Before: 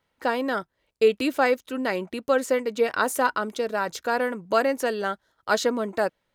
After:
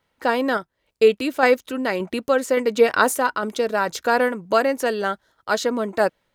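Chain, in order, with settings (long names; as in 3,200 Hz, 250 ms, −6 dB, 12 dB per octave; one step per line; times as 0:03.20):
sample-and-hold tremolo
level +7 dB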